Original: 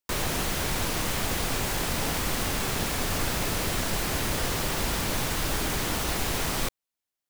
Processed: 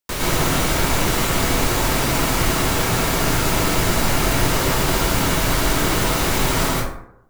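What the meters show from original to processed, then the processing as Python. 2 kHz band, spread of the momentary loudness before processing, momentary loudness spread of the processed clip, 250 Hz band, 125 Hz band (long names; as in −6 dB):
+9.0 dB, 0 LU, 1 LU, +10.5 dB, +10.5 dB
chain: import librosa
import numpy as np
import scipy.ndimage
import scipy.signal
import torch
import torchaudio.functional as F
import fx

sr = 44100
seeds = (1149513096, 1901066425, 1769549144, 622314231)

y = fx.rev_plate(x, sr, seeds[0], rt60_s=0.75, hf_ratio=0.45, predelay_ms=100, drr_db=-5.5)
y = y * librosa.db_to_amplitude(3.0)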